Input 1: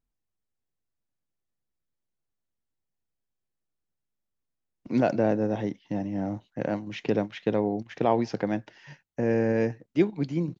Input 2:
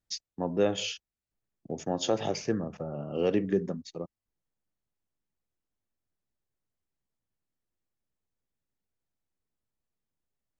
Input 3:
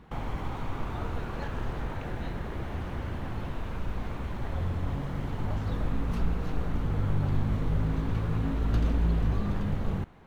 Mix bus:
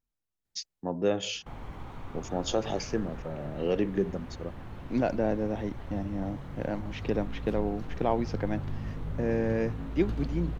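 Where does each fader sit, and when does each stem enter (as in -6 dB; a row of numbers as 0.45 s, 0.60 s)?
-4.0 dB, -1.0 dB, -8.0 dB; 0.00 s, 0.45 s, 1.35 s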